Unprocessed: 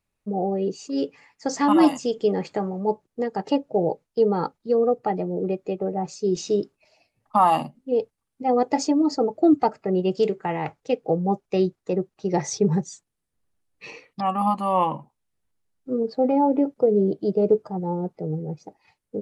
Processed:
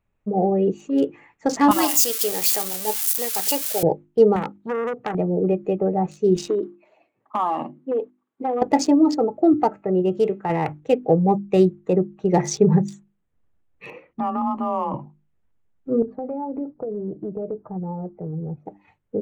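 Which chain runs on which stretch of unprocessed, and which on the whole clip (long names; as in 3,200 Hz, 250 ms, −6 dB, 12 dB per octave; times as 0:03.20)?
0:01.71–0:03.83: spike at every zero crossing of −22.5 dBFS + high-pass filter 1,300 Hz 6 dB per octave + high-shelf EQ 4,900 Hz +10 dB
0:04.36–0:05.15: high-pass filter 60 Hz 24 dB per octave + downward compressor 12 to 1, threshold −22 dBFS + saturating transformer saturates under 1,700 Hz
0:06.48–0:08.62: downward compressor 8 to 1, threshold −24 dBFS + hard clipping −22 dBFS + loudspeaker in its box 260–8,300 Hz, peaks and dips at 350 Hz +8 dB, 1,100 Hz +6 dB, 2,700 Hz −3 dB, 5,600 Hz −9 dB
0:09.14–0:10.50: parametric band 700 Hz +2.5 dB 2 octaves + tuned comb filter 120 Hz, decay 0.23 s, harmonics odd, mix 50%
0:13.90–0:14.94: low-pass filter 1,500 Hz 6 dB per octave + frequency shifter +28 Hz + downward compressor 4 to 1, threshold −25 dBFS
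0:16.02–0:18.66: low-pass filter 1,400 Hz + flanger 1.7 Hz, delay 0.3 ms, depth 1.5 ms, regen +56% + downward compressor 5 to 1, threshold −31 dBFS
whole clip: adaptive Wiener filter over 9 samples; low-shelf EQ 170 Hz +5 dB; mains-hum notches 50/100/150/200/250/300/350 Hz; level +4.5 dB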